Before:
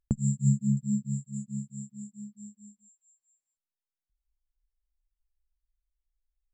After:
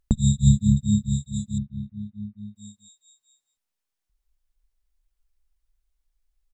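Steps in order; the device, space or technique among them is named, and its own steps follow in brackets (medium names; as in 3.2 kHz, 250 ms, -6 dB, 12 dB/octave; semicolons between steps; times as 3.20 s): octave pedal (harmony voices -12 st -5 dB); 1.58–2.56 s: inverse Chebyshev low-pass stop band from 4.9 kHz, stop band 40 dB; trim +6.5 dB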